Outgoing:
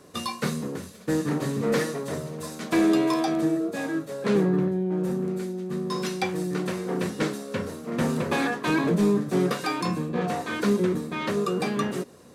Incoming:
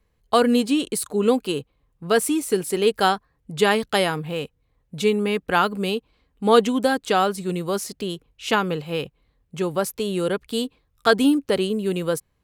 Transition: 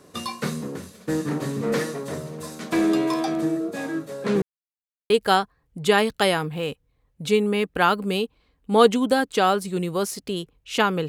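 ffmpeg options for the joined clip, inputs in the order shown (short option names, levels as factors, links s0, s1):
-filter_complex "[0:a]apad=whole_dur=11.08,atrim=end=11.08,asplit=2[s0][s1];[s0]atrim=end=4.42,asetpts=PTS-STARTPTS,afade=t=out:st=4.416:d=0.004:c=hsin[s2];[s1]atrim=start=4.42:end=5.1,asetpts=PTS-STARTPTS,volume=0[s3];[1:a]atrim=start=2.83:end=8.81,asetpts=PTS-STARTPTS,afade=t=in:d=0.004:c=hsin[s4];[s2][s3][s4]concat=n=3:v=0:a=1"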